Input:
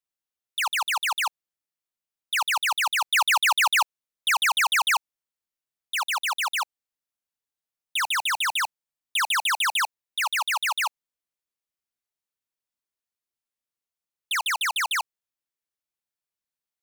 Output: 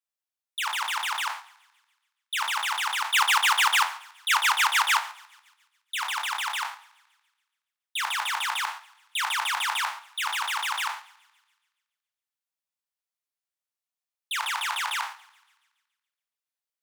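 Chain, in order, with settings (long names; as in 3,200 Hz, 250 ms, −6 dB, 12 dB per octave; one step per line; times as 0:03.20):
peak hold with a decay on every bin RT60 0.42 s
in parallel at −1 dB: output level in coarse steps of 19 dB
on the sum: soft clipping −3 dBFS, distortion −22 dB
high-pass filter 560 Hz 24 dB per octave
on a send: feedback echo with a high-pass in the loop 141 ms, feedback 53%, high-pass 770 Hz, level −18.5 dB
on the sum: transient designer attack +1 dB, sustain −4 dB
flanger 1.6 Hz, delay 4.2 ms, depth 1.8 ms, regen −62%
level −3 dB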